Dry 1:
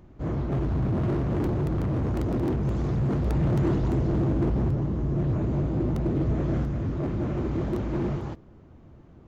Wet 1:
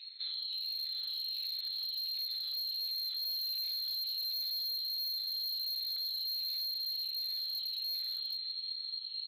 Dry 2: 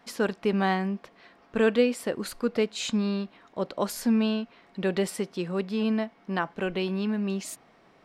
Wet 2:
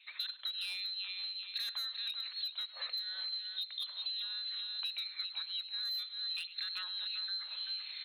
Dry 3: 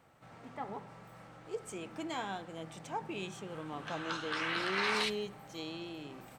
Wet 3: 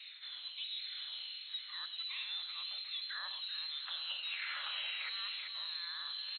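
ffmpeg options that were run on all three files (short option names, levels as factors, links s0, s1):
-filter_complex "[0:a]afftfilt=real='re*pow(10,13/40*sin(2*PI*(0.55*log(max(b,1)*sr/1024/100)/log(2)-(1.4)*(pts-256)/sr)))':imag='im*pow(10,13/40*sin(2*PI*(0.55*log(max(b,1)*sr/1024/100)/log(2)-(1.4)*(pts-256)/sr)))':win_size=1024:overlap=0.75,bandreject=f=50:t=h:w=6,bandreject=f=100:t=h:w=6,bandreject=f=150:t=h:w=6,bandreject=f=200:t=h:w=6,areverse,acompressor=mode=upward:threshold=0.0316:ratio=2.5,areverse,asubboost=boost=5:cutoff=130,asplit=2[s0][s1];[s1]adelay=386,lowpass=f=2400:p=1,volume=0.422,asplit=2[s2][s3];[s3]adelay=386,lowpass=f=2400:p=1,volume=0.28,asplit=2[s4][s5];[s5]adelay=386,lowpass=f=2400:p=1,volume=0.28[s6];[s2][s4][s6]amix=inputs=3:normalize=0[s7];[s0][s7]amix=inputs=2:normalize=0,lowpass=f=3200:t=q:w=0.5098,lowpass=f=3200:t=q:w=0.6013,lowpass=f=3200:t=q:w=0.9,lowpass=f=3200:t=q:w=2.563,afreqshift=-3800,asplit=2[s8][s9];[s9]adelay=100,highpass=300,lowpass=3400,asoftclip=type=hard:threshold=0.237,volume=0.126[s10];[s8][s10]amix=inputs=2:normalize=0,afreqshift=490,volume=7.94,asoftclip=hard,volume=0.126,acompressor=threshold=0.0251:ratio=10,volume=0.596"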